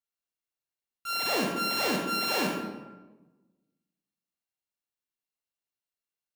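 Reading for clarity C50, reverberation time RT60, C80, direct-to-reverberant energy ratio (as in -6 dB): 2.0 dB, 1.2 s, 5.0 dB, -1.0 dB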